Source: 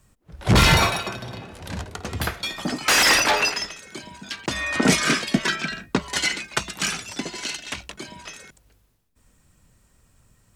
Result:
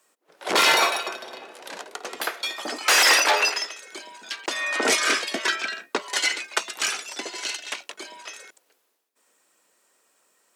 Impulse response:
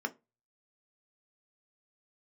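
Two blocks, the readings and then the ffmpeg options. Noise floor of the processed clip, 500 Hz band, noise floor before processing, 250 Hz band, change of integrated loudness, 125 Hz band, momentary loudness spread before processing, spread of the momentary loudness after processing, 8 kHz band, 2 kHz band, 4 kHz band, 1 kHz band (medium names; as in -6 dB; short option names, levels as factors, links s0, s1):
-69 dBFS, -1.0 dB, -62 dBFS, -11.5 dB, -0.5 dB, under -30 dB, 22 LU, 22 LU, 0.0 dB, 0.0 dB, 0.0 dB, 0.0 dB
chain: -af "highpass=f=370:w=0.5412,highpass=f=370:w=1.3066"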